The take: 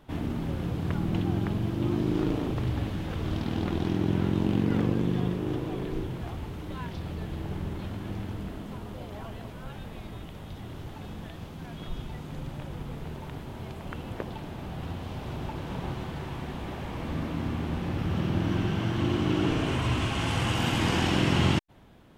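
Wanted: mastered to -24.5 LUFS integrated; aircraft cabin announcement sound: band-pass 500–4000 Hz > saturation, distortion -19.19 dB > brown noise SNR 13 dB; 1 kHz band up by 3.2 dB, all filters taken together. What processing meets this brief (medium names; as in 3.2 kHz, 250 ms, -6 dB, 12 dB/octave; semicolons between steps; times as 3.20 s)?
band-pass 500–4000 Hz; peaking EQ 1 kHz +4.5 dB; saturation -23.5 dBFS; brown noise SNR 13 dB; trim +13 dB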